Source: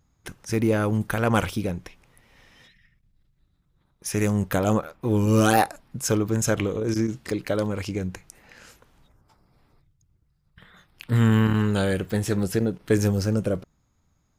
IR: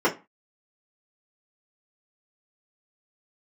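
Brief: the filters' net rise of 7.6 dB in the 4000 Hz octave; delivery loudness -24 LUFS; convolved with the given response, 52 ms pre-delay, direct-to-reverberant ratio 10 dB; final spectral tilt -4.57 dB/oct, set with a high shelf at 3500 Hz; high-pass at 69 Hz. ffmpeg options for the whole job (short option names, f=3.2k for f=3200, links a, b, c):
-filter_complex "[0:a]highpass=69,highshelf=f=3.5k:g=8.5,equalizer=f=4k:t=o:g=4,asplit=2[a][b];[1:a]atrim=start_sample=2205,adelay=52[c];[b][c]afir=irnorm=-1:irlink=0,volume=-26.5dB[d];[a][d]amix=inputs=2:normalize=0,volume=-1.5dB"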